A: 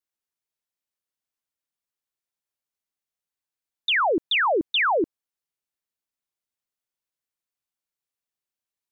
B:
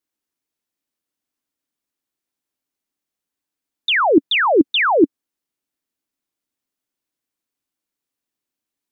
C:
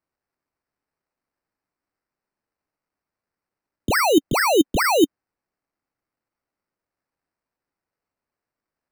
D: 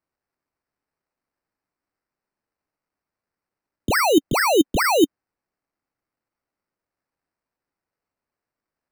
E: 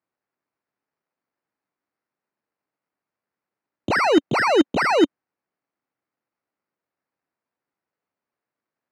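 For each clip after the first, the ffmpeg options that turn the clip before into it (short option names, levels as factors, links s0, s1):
-af "equalizer=f=280:t=o:w=0.78:g=11.5,volume=1.68"
-af "acrusher=samples=13:mix=1:aa=0.000001,volume=0.708"
-af anull
-af "aeval=exprs='0.501*(cos(1*acos(clip(val(0)/0.501,-1,1)))-cos(1*PI/2))+0.0501*(cos(8*acos(clip(val(0)/0.501,-1,1)))-cos(8*PI/2))':c=same,highpass=130,lowpass=3900"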